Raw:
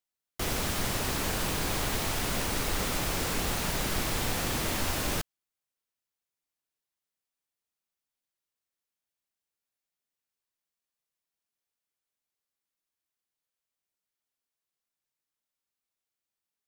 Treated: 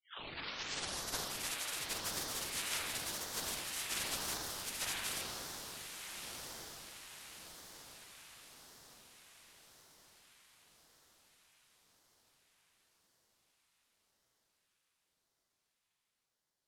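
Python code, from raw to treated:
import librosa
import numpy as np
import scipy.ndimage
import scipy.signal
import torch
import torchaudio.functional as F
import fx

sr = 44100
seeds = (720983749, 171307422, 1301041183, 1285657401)

y = fx.tape_start_head(x, sr, length_s=2.29)
y = fx.spec_gate(y, sr, threshold_db=-25, keep='weak')
y = scipy.signal.sosfilt(scipy.signal.butter(4, 12000.0, 'lowpass', fs=sr, output='sos'), y)
y = fx.low_shelf(y, sr, hz=190.0, db=-10.0)
y = fx.echo_diffused(y, sr, ms=1322, feedback_pct=52, wet_db=-7)
y = fx.rev_spring(y, sr, rt60_s=2.2, pass_ms=(39,), chirp_ms=45, drr_db=-5.0)
y = fx.ring_lfo(y, sr, carrier_hz=1500.0, swing_pct=75, hz=0.91)
y = y * 10.0 ** (2.5 / 20.0)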